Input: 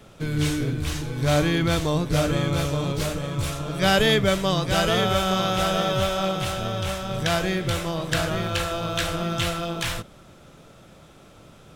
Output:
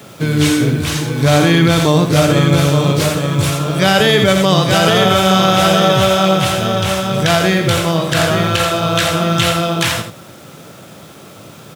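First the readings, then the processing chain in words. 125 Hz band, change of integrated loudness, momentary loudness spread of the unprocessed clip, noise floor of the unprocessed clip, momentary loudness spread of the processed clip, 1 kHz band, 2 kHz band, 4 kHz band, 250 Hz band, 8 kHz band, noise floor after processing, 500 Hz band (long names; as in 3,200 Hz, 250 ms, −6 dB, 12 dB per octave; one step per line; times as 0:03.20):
+11.0 dB, +10.5 dB, 7 LU, −50 dBFS, 5 LU, +11.0 dB, +10.0 dB, +10.5 dB, +11.5 dB, +11.0 dB, −38 dBFS, +10.5 dB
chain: bit reduction 9 bits
high-pass filter 99 Hz 24 dB per octave
single-tap delay 84 ms −8 dB
boost into a limiter +12.5 dB
level −1 dB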